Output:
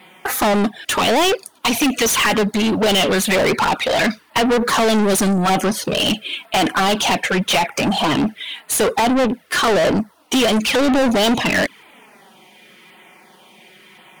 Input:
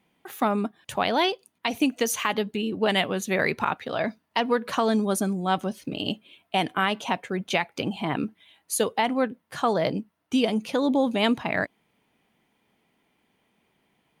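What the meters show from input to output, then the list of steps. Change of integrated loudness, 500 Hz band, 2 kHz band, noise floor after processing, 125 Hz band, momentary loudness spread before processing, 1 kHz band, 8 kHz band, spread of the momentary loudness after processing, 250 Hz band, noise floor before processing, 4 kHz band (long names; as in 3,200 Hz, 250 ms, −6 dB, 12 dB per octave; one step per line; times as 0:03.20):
+9.0 dB, +8.5 dB, +9.5 dB, −51 dBFS, +9.0 dB, 8 LU, +8.0 dB, +13.0 dB, 5 LU, +8.0 dB, −73 dBFS, +11.5 dB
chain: flanger swept by the level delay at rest 5.5 ms, full sweep at −20 dBFS
auto-filter notch saw down 0.93 Hz 580–6,500 Hz
mid-hump overdrive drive 34 dB, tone 7,900 Hz, clips at −11.5 dBFS
level +2.5 dB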